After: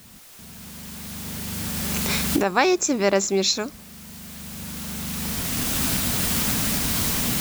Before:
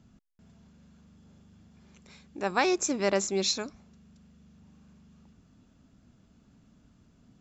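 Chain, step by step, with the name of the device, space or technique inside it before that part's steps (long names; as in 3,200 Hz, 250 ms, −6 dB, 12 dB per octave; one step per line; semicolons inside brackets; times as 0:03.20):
cheap recorder with automatic gain (white noise bed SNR 21 dB; camcorder AGC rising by 11 dB per second)
level +6.5 dB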